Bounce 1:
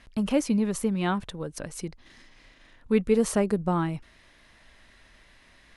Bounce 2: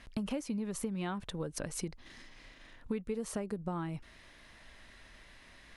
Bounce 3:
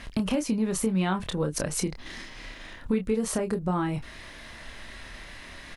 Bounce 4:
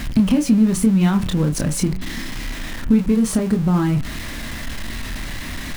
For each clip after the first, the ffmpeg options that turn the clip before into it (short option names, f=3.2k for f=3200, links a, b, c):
-af "acompressor=threshold=-33dB:ratio=10"
-filter_complex "[0:a]asplit=2[a][b];[b]alimiter=level_in=9dB:limit=-24dB:level=0:latency=1:release=199,volume=-9dB,volume=2dB[c];[a][c]amix=inputs=2:normalize=0,asplit=2[d][e];[e]adelay=27,volume=-7dB[f];[d][f]amix=inputs=2:normalize=0,volume=5dB"
-af "aeval=exprs='val(0)+0.5*0.0299*sgn(val(0))':c=same,lowshelf=f=340:t=q:w=1.5:g=7,bandreject=f=93.09:t=h:w=4,bandreject=f=186.18:t=h:w=4,bandreject=f=279.27:t=h:w=4,bandreject=f=372.36:t=h:w=4,bandreject=f=465.45:t=h:w=4,bandreject=f=558.54:t=h:w=4,bandreject=f=651.63:t=h:w=4,bandreject=f=744.72:t=h:w=4,bandreject=f=837.81:t=h:w=4,bandreject=f=930.9:t=h:w=4,bandreject=f=1.02399k:t=h:w=4,bandreject=f=1.11708k:t=h:w=4,bandreject=f=1.21017k:t=h:w=4,bandreject=f=1.30326k:t=h:w=4,bandreject=f=1.39635k:t=h:w=4,bandreject=f=1.48944k:t=h:w=4,bandreject=f=1.58253k:t=h:w=4,bandreject=f=1.67562k:t=h:w=4,bandreject=f=1.76871k:t=h:w=4,bandreject=f=1.8618k:t=h:w=4,bandreject=f=1.95489k:t=h:w=4,bandreject=f=2.04798k:t=h:w=4,bandreject=f=2.14107k:t=h:w=4,bandreject=f=2.23416k:t=h:w=4,bandreject=f=2.32725k:t=h:w=4,bandreject=f=2.42034k:t=h:w=4,bandreject=f=2.51343k:t=h:w=4,bandreject=f=2.60652k:t=h:w=4,bandreject=f=2.69961k:t=h:w=4,bandreject=f=2.7927k:t=h:w=4,bandreject=f=2.88579k:t=h:w=4,bandreject=f=2.97888k:t=h:w=4,bandreject=f=3.07197k:t=h:w=4,bandreject=f=3.16506k:t=h:w=4,volume=2dB"